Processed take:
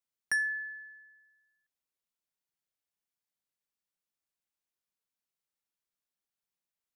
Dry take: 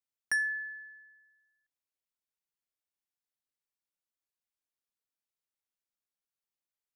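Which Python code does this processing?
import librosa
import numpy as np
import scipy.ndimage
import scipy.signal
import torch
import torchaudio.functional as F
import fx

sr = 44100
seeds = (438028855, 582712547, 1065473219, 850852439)

y = fx.peak_eq(x, sr, hz=180.0, db=5.5, octaves=0.31)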